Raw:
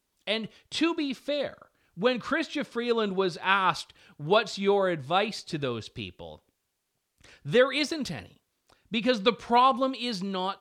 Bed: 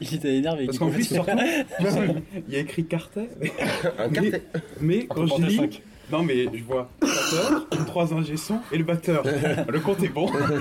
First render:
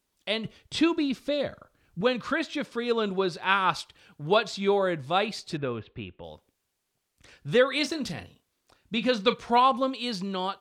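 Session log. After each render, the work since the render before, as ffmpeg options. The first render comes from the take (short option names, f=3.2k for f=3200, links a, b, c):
-filter_complex "[0:a]asettb=1/sr,asplit=3[a][b][c];[a]atrim=end=0.454[d];[b]atrim=start=0.45:end=2.01,asetpts=PTS-STARTPTS,afade=t=in:d=0.004:c=qsin,afade=t=out:st=1.556:d=0.004:c=qsin,lowshelf=f=230:g=9[e];[c]atrim=start=2.006[f];[d][e]acrossfade=d=0.004:c1=hsin:c2=qsin[g];[g][f]acrossfade=d=0.004:c1=qsin:c2=hsin,asettb=1/sr,asplit=3[h][i][j];[h]atrim=end=5.574[k];[i]atrim=start=5.57:end=6.24,asetpts=PTS-STARTPTS,afade=t=in:d=0.004:c=qsin,afade=t=out:st=0.666:d=0.004:c=qsin,lowpass=f=2.6k:w=0.5412,lowpass=f=2.6k:w=1.3066[l];[j]atrim=start=6.236[m];[k][l]acrossfade=d=0.004:c1=hsin:c2=qsin[n];[n][m]acrossfade=d=0.004:c1=qsin:c2=hsin,asettb=1/sr,asplit=3[o][p][q];[o]atrim=end=7.684[r];[p]atrim=start=7.68:end=9.34,asetpts=PTS-STARTPTS,afade=t=in:d=0.004:c=qsin,afade=t=out:st=1.656:d=0.004:c=qsin,asplit=2[s][t];[t]adelay=34,volume=-12dB[u];[s][u]amix=inputs=2:normalize=0,atrim=end_sample=73206[v];[q]atrim=start=9.336[w];[r][v]acrossfade=d=0.004:c1=hsin:c2=qsin[x];[x][w]acrossfade=d=0.004:c1=qsin:c2=hsin"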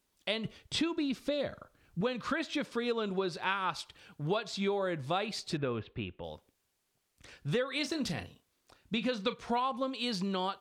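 -af "acompressor=threshold=-29dB:ratio=6"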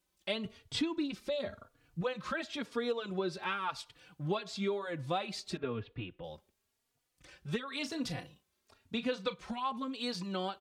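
-filter_complex "[0:a]asplit=2[a][b];[b]adelay=3.5,afreqshift=0.97[c];[a][c]amix=inputs=2:normalize=1"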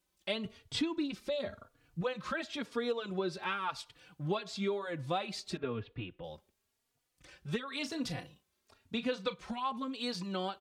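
-af anull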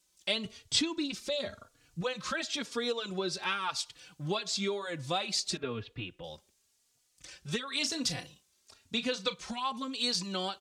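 -af "equalizer=f=6.7k:w=0.58:g=14.5"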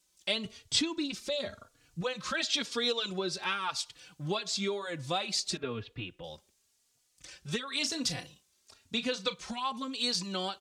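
-filter_complex "[0:a]asettb=1/sr,asplit=3[a][b][c];[a]atrim=end=2.344[d];[b]atrim=start=2.34:end=3.13,asetpts=PTS-STARTPTS,afade=t=in:d=0.004:c=qsin,afade=t=out:st=0.786:d=0.004:c=qsin,equalizer=f=3.9k:w=0.8:g=6.5[e];[c]atrim=start=3.126[f];[d][e]acrossfade=d=0.004:c1=hsin:c2=qsin[g];[g][f]acrossfade=d=0.004:c1=qsin:c2=hsin"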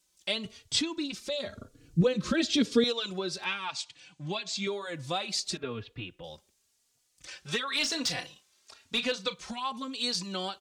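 -filter_complex "[0:a]asettb=1/sr,asplit=3[a][b][c];[a]atrim=end=1.564[d];[b]atrim=start=1.56:end=2.84,asetpts=PTS-STARTPTS,afade=t=in:d=0.004:c=qsin,afade=t=out:st=1.276:d=0.004:c=qsin,lowshelf=f=550:t=q:w=1.5:g=12.5[e];[c]atrim=start=2.836[f];[d][e]acrossfade=d=0.004:c1=hsin:c2=qsin[g];[g][f]acrossfade=d=0.004:c1=qsin:c2=hsin,asettb=1/sr,asplit=3[h][i][j];[h]atrim=end=3.454[k];[i]atrim=start=3.45:end=4.67,asetpts=PTS-STARTPTS,afade=t=in:d=0.004:c=qsin,afade=t=out:st=1.216:d=0.004:c=qsin,highpass=110,equalizer=f=450:t=q:w=4:g=-8,equalizer=f=1.3k:t=q:w=4:g=-7,equalizer=f=2.4k:t=q:w=4:g=4,equalizer=f=5.3k:t=q:w=4:g=-3,lowpass=f=8k:w=0.5412,lowpass=f=8k:w=1.3066[l];[j]atrim=start=4.666[m];[k][l]acrossfade=d=0.004:c1=hsin:c2=qsin[n];[n][m]acrossfade=d=0.004:c1=qsin:c2=hsin,asettb=1/sr,asplit=3[o][p][q];[o]atrim=end=7.274[r];[p]atrim=start=7.27:end=9.12,asetpts=PTS-STARTPTS,afade=t=in:d=0.004:c=qsin,afade=t=out:st=1.846:d=0.004:c=qsin,asplit=2[s][t];[t]highpass=f=720:p=1,volume=13dB,asoftclip=type=tanh:threshold=-16.5dB[u];[s][u]amix=inputs=2:normalize=0,lowpass=f=4.1k:p=1,volume=-6dB[v];[q]atrim=start=9.116[w];[r][v]acrossfade=d=0.004:c1=hsin:c2=qsin[x];[x][w]acrossfade=d=0.004:c1=qsin:c2=hsin"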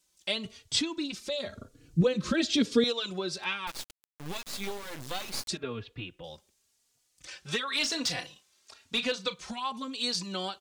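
-filter_complex "[0:a]asettb=1/sr,asplit=3[a][b][c];[a]atrim=end=3.674[d];[b]atrim=start=3.67:end=5.48,asetpts=PTS-STARTPTS,afade=t=in:d=0.004:c=qsin,afade=t=out:st=1.806:d=0.004:c=qsin,acrusher=bits=4:dc=4:mix=0:aa=0.000001[e];[c]atrim=start=5.476[f];[d][e]acrossfade=d=0.004:c1=hsin:c2=qsin[g];[g][f]acrossfade=d=0.004:c1=qsin:c2=hsin"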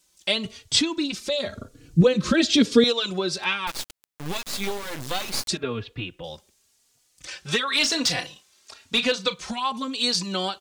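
-af "volume=7.5dB"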